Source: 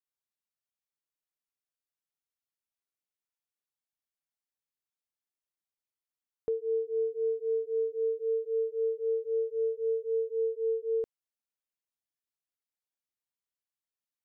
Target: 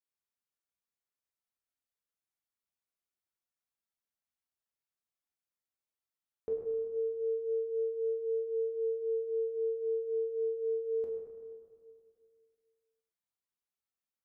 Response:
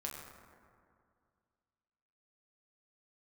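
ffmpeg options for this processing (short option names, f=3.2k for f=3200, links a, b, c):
-filter_complex "[1:a]atrim=start_sample=2205[a];[0:a][a]afir=irnorm=-1:irlink=0,volume=-1.5dB"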